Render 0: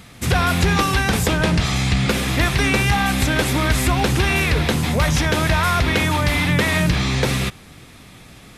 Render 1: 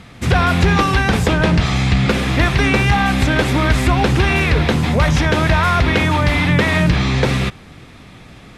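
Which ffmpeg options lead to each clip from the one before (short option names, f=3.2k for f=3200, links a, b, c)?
-af "aemphasis=mode=reproduction:type=50fm,volume=3.5dB"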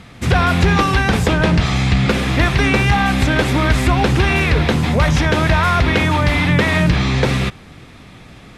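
-af anull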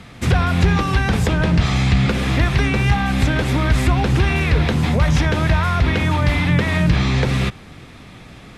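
-filter_complex "[0:a]acrossover=split=190[a][b];[b]acompressor=threshold=-20dB:ratio=4[c];[a][c]amix=inputs=2:normalize=0"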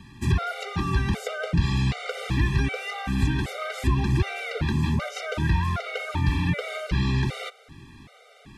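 -af "afftfilt=real='re*gt(sin(2*PI*1.3*pts/sr)*(1-2*mod(floor(b*sr/1024/390),2)),0)':imag='im*gt(sin(2*PI*1.3*pts/sr)*(1-2*mod(floor(b*sr/1024/390),2)),0)':win_size=1024:overlap=0.75,volume=-5.5dB"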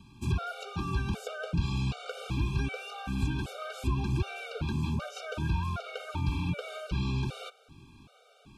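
-af "asuperstop=centerf=1900:order=20:qfactor=3.2,volume=-7dB"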